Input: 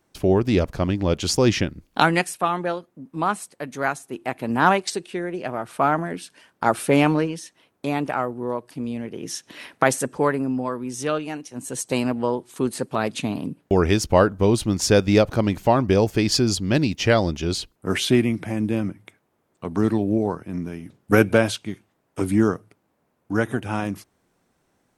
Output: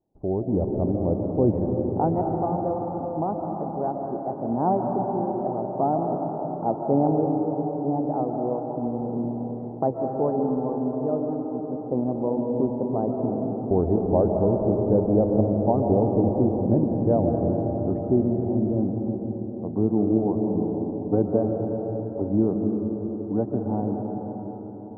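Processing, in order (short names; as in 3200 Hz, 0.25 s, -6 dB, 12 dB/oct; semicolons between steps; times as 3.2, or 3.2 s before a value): Chebyshev low-pass 810 Hz, order 4; AGC gain up to 7.5 dB; reverb RT60 4.9 s, pre-delay 0.1 s, DRR 1 dB; gain -8.5 dB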